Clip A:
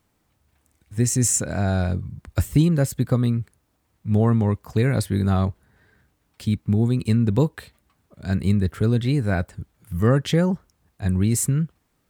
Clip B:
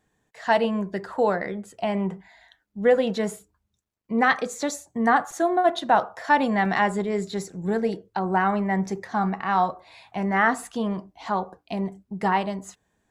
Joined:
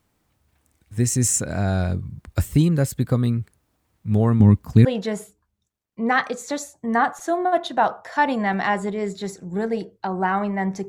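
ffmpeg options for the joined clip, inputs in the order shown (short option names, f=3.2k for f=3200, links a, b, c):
-filter_complex "[0:a]asettb=1/sr,asplit=3[a][b][c];[a]atrim=end=4.404[d];[b]atrim=start=4.4:end=4.85,asetpts=PTS-STARTPTS,afade=t=in:d=0.004:c=qsin,afade=t=out:st=0.446:d=0.004:c=qsin,lowshelf=f=340:t=q:w=1.5:g=7.5[e];[c]atrim=start=4.846[f];[d][e]acrossfade=d=0.004:c1=hsin:c2=qsin[g];[g][f]acrossfade=d=0.004:c1=qsin:c2=hsin,apad=whole_dur=10.88,atrim=end=10.88,atrim=end=4.852[h];[1:a]atrim=start=2.968:end=9[i];[h][i]acrossfade=d=0.004:c1=hsin:c2=hsin"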